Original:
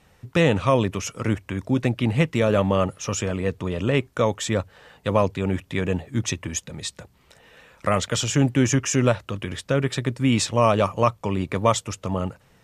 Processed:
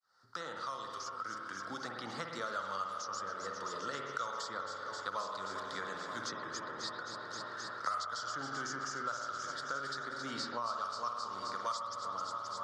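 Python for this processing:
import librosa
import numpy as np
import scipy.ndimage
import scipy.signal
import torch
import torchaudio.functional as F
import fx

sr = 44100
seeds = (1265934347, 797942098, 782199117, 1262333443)

p1 = fx.fade_in_head(x, sr, length_s=3.91)
p2 = fx.double_bandpass(p1, sr, hz=2500.0, octaves=1.8)
p3 = p2 + fx.echo_alternate(p2, sr, ms=132, hz=1900.0, feedback_pct=87, wet_db=-10.5, dry=0)
p4 = fx.rev_spring(p3, sr, rt60_s=1.1, pass_ms=(51,), chirp_ms=70, drr_db=2.5)
p5 = fx.band_squash(p4, sr, depth_pct=100)
y = p5 * librosa.db_to_amplitude(-2.0)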